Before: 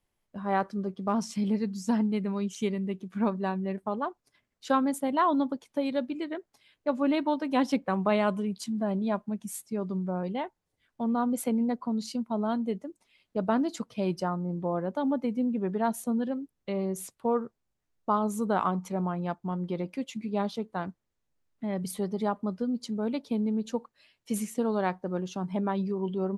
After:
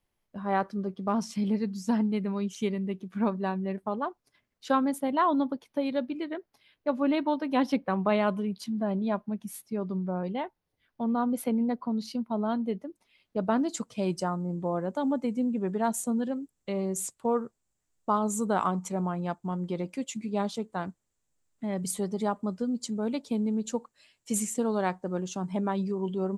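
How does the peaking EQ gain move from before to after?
peaking EQ 7.6 kHz 0.55 oct
4.77 s -3 dB
5.29 s -10 dB
12.86 s -10 dB
13.57 s +2 dB
13.85 s +13.5 dB

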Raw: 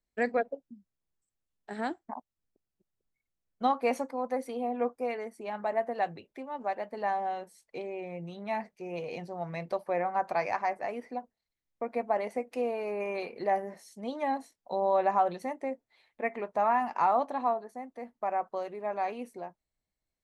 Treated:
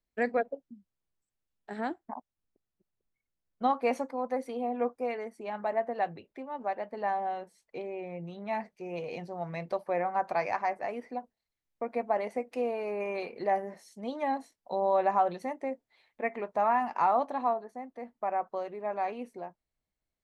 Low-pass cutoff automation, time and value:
low-pass 6 dB/octave
4.6 kHz
from 1.79 s 2.7 kHz
from 3.69 s 5.6 kHz
from 5.76 s 3.3 kHz
from 8.53 s 7.5 kHz
from 17.53 s 3.9 kHz

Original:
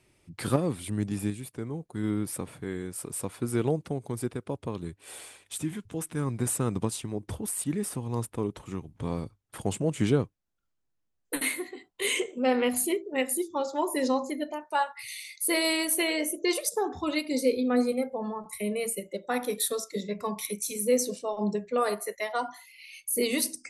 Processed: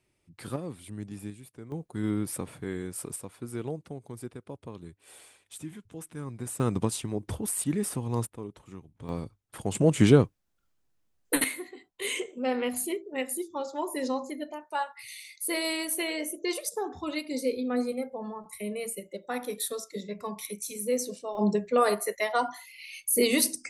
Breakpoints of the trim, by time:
-9 dB
from 1.72 s 0 dB
from 3.16 s -8 dB
from 6.60 s +1.5 dB
from 8.27 s -9 dB
from 9.09 s -1.5 dB
from 9.75 s +6 dB
from 11.44 s -4 dB
from 21.35 s +3.5 dB

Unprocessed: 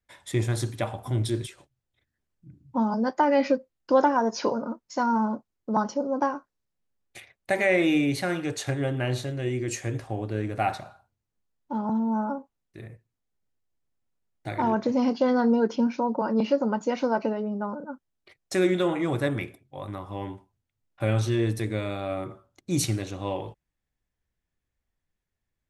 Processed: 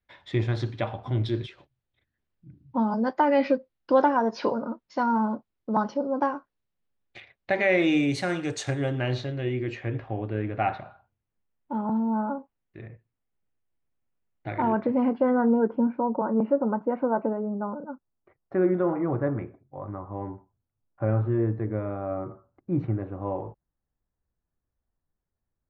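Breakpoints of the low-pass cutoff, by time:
low-pass 24 dB/octave
7.54 s 4.2 kHz
8.10 s 8.4 kHz
8.75 s 8.4 kHz
9.18 s 4.9 kHz
9.84 s 3 kHz
14.57 s 3 kHz
15.72 s 1.4 kHz

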